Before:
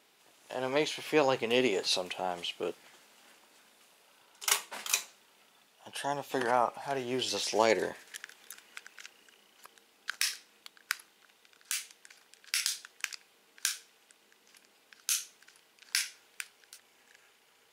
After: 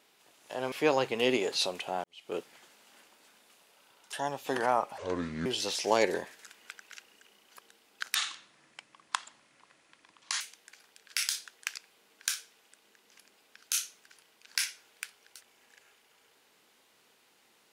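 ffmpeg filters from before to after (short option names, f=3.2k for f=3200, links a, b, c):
-filter_complex "[0:a]asplit=9[a][b][c][d][e][f][g][h][i];[a]atrim=end=0.722[j];[b]atrim=start=1.028:end=2.35,asetpts=PTS-STARTPTS,afade=t=out:st=1.318:d=0.004:c=hsin[k];[c]atrim=start=2.35:end=4.442,asetpts=PTS-STARTPTS,afade=t=in:d=0.31:c=qua[l];[d]atrim=start=5.978:end=6.834[m];[e]atrim=start=6.83:end=7.14,asetpts=PTS-STARTPTS,asetrate=28665,aresample=44100,atrim=end_sample=21032,asetpts=PTS-STARTPTS[n];[f]atrim=start=7.136:end=8.132[o];[g]atrim=start=8.518:end=10.224[p];[h]atrim=start=10.22:end=11.78,asetpts=PTS-STARTPTS,asetrate=30429,aresample=44100,atrim=end_sample=99704,asetpts=PTS-STARTPTS[q];[i]atrim=start=11.776[r];[k][l]concat=n=2:v=0:a=1[s];[j][s]acrossfade=d=0.004:c1=hsin:c2=hsin[t];[t][m]acrossfade=d=0.004:c1=hsin:c2=hsin[u];[u][n]acrossfade=d=0.004:c1=hsin:c2=hsin[v];[v][o]acrossfade=d=0.004:c1=hsin:c2=hsin[w];[w][p]acrossfade=d=0.004:c1=hsin:c2=hsin[x];[x][q]acrossfade=d=0.004:c1=hsin:c2=hsin[y];[y][r]acrossfade=d=0.004:c1=hsin:c2=hsin"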